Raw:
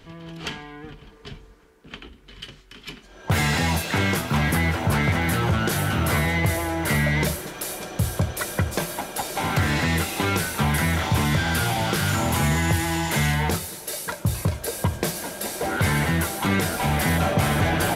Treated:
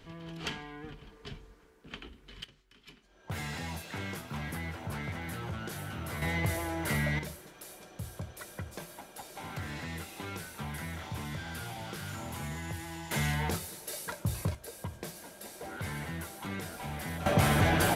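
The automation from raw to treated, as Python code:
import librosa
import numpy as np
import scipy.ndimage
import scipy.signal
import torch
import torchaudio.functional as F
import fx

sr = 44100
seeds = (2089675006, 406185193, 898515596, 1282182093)

y = fx.gain(x, sr, db=fx.steps((0.0, -5.5), (2.44, -16.5), (6.22, -9.0), (7.19, -17.5), (13.11, -9.0), (14.55, -16.5), (17.26, -4.0)))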